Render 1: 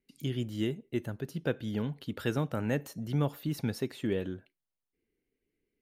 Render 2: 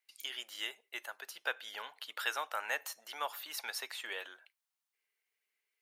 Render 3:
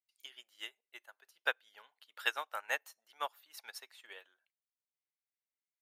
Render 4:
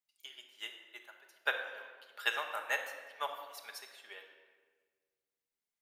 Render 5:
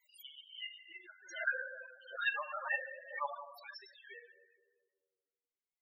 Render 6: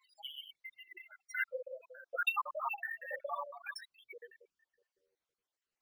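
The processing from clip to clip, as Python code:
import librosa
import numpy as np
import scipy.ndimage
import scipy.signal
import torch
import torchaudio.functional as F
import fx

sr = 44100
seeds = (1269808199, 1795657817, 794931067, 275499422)

y1 = scipy.signal.sosfilt(scipy.signal.butter(4, 830.0, 'highpass', fs=sr, output='sos'), x)
y1 = y1 * librosa.db_to_amplitude(5.0)
y2 = fx.upward_expand(y1, sr, threshold_db=-47.0, expansion=2.5)
y2 = y2 * librosa.db_to_amplitude(4.5)
y3 = fx.room_shoebox(y2, sr, seeds[0], volume_m3=1700.0, walls='mixed', distance_m=1.3)
y4 = fx.spec_topn(y3, sr, count=8)
y4 = fx.pre_swell(y4, sr, db_per_s=120.0)
y4 = y4 * librosa.db_to_amplitude(1.5)
y5 = fx.spec_dropout(y4, sr, seeds[1], share_pct=67)
y5 = np.interp(np.arange(len(y5)), np.arange(len(y5))[::3], y5[::3])
y5 = y5 * librosa.db_to_amplitude(8.0)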